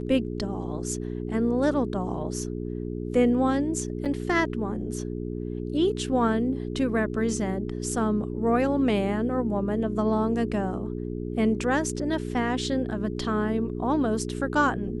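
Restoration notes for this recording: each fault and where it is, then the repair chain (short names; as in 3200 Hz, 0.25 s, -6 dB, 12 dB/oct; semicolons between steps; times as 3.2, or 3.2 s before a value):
hum 60 Hz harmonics 7 -32 dBFS
4.05–4.06 gap 6.1 ms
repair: de-hum 60 Hz, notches 7; interpolate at 4.05, 6.1 ms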